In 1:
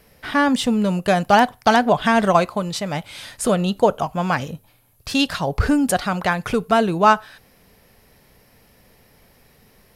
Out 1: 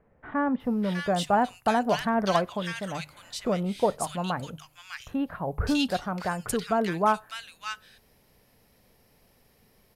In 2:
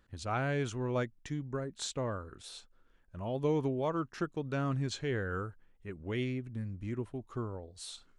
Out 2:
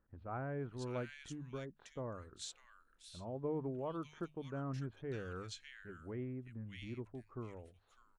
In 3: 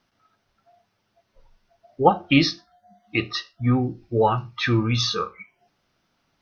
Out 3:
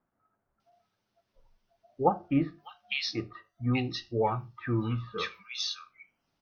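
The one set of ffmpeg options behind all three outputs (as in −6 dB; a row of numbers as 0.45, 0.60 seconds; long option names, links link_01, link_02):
-filter_complex "[0:a]bandreject=frequency=50:width_type=h:width=6,bandreject=frequency=100:width_type=h:width=6,bandreject=frequency=150:width_type=h:width=6,acrossover=split=1700[link_01][link_02];[link_02]adelay=600[link_03];[link_01][link_03]amix=inputs=2:normalize=0,volume=-8dB"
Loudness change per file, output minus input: −9.0, −8.5, −9.0 LU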